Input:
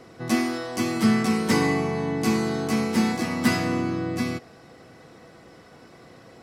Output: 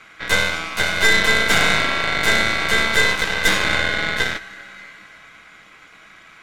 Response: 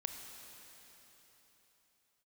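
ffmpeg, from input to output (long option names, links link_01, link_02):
-filter_complex "[0:a]aeval=exprs='val(0)*sin(2*PI*1800*n/s)':channel_layout=same,asplit=2[link_01][link_02];[1:a]atrim=start_sample=2205,highshelf=frequency=10000:gain=-9.5[link_03];[link_02][link_03]afir=irnorm=-1:irlink=0,volume=0.5dB[link_04];[link_01][link_04]amix=inputs=2:normalize=0,aeval=exprs='clip(val(0),-1,0.0596)':channel_layout=same,aeval=exprs='0.75*(cos(1*acos(clip(val(0)/0.75,-1,1)))-cos(1*PI/2))+0.0335*(cos(5*acos(clip(val(0)/0.75,-1,1)))-cos(5*PI/2))+0.211*(cos(8*acos(clip(val(0)/0.75,-1,1)))-cos(8*PI/2))':channel_layout=same,volume=-2dB"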